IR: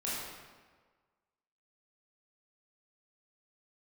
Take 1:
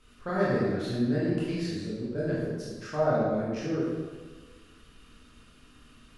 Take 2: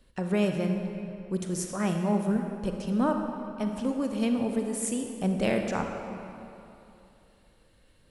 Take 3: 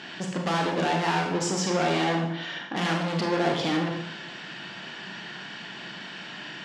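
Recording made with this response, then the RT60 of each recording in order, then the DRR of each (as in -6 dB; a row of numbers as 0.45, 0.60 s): 1; 1.5, 2.9, 0.85 s; -8.5, 3.5, 1.0 dB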